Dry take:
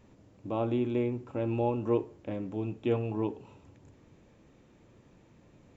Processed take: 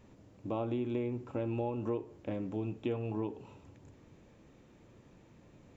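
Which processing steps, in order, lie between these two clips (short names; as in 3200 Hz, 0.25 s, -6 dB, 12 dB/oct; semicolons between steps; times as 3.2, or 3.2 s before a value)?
compressor 5:1, threshold -31 dBFS, peak gain reduction 9 dB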